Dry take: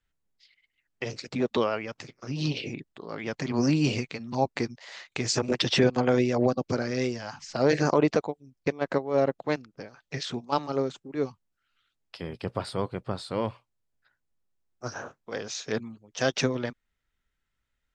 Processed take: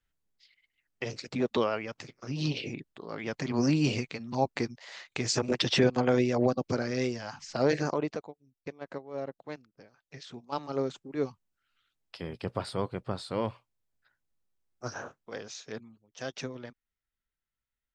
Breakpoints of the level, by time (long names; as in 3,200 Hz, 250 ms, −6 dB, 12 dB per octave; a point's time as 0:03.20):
0:07.61 −2 dB
0:08.25 −13 dB
0:10.26 −13 dB
0:10.86 −2 dB
0:15.06 −2 dB
0:15.87 −12 dB